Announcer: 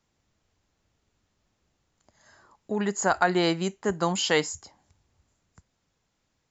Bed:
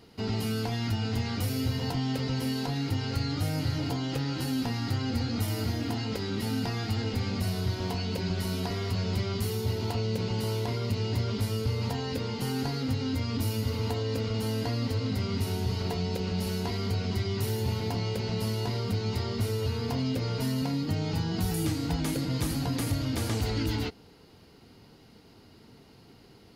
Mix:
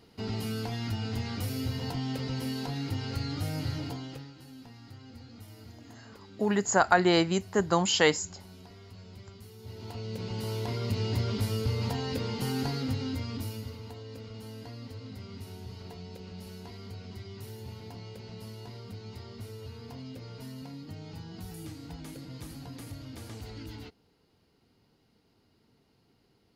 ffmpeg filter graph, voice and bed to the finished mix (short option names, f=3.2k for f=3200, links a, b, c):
-filter_complex "[0:a]adelay=3700,volume=0.5dB[a];[1:a]volume=15dB,afade=t=out:st=3.71:d=0.62:silence=0.16788,afade=t=in:st=9.57:d=1.44:silence=0.11885,afade=t=out:st=12.69:d=1.12:silence=0.223872[b];[a][b]amix=inputs=2:normalize=0"